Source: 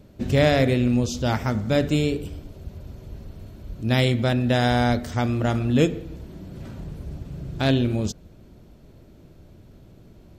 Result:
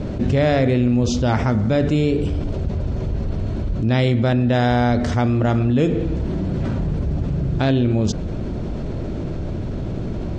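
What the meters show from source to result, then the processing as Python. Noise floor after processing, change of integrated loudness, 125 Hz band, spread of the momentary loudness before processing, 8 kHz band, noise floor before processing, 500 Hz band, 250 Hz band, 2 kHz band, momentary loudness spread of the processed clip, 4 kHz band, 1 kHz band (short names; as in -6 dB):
-26 dBFS, +1.5 dB, +5.5 dB, 21 LU, n/a, -50 dBFS, +3.5 dB, +4.5 dB, +0.5 dB, 10 LU, -1.5 dB, +3.0 dB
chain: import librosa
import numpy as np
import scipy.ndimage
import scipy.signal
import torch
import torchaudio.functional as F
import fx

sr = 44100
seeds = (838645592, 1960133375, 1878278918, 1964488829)

y = scipy.signal.sosfilt(scipy.signal.butter(4, 7400.0, 'lowpass', fs=sr, output='sos'), x)
y = fx.high_shelf(y, sr, hz=2500.0, db=-9.0)
y = fx.env_flatten(y, sr, amount_pct=70)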